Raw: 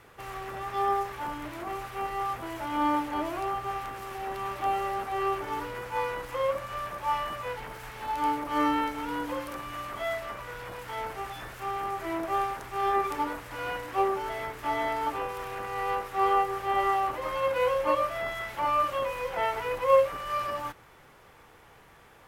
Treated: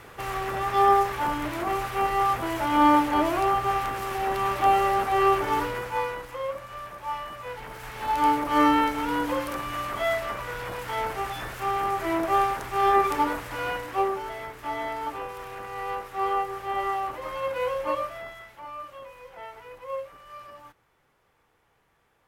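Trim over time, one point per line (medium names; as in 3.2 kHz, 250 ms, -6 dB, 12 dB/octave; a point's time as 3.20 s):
5.61 s +8 dB
6.40 s -3.5 dB
7.34 s -3.5 dB
8.12 s +6 dB
13.42 s +6 dB
14.39 s -2 dB
17.98 s -2 dB
18.62 s -13 dB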